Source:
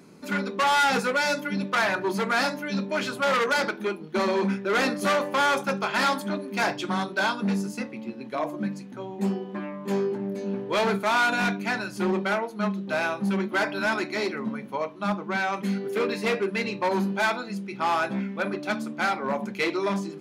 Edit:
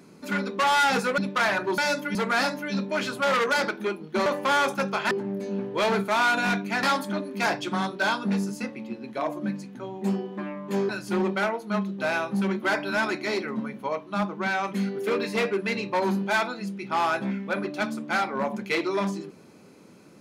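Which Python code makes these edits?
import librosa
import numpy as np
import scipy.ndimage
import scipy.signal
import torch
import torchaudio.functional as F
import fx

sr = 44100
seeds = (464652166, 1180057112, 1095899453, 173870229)

y = fx.edit(x, sr, fx.move(start_s=1.18, length_s=0.37, to_s=2.15),
    fx.cut(start_s=4.26, length_s=0.89),
    fx.move(start_s=10.06, length_s=1.72, to_s=6.0), tone=tone)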